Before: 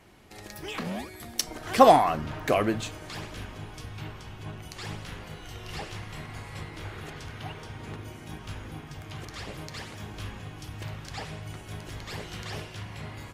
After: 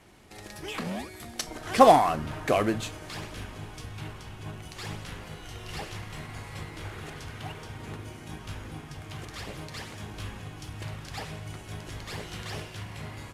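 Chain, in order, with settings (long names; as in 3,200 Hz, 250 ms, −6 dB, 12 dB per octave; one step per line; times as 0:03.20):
variable-slope delta modulation 64 kbit/s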